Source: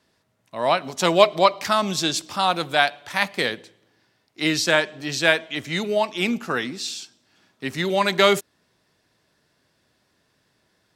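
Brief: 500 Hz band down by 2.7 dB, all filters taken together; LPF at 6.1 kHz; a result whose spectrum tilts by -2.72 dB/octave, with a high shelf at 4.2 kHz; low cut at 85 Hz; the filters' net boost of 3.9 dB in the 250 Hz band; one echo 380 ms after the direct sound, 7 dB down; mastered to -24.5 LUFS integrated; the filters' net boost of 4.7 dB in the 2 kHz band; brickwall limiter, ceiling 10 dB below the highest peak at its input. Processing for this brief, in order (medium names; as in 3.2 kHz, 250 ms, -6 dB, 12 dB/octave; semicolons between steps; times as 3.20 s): high-pass 85 Hz; low-pass 6.1 kHz; peaking EQ 250 Hz +7.5 dB; peaking EQ 500 Hz -6 dB; peaking EQ 2 kHz +8 dB; treble shelf 4.2 kHz -8.5 dB; peak limiter -10 dBFS; delay 380 ms -7 dB; trim -1.5 dB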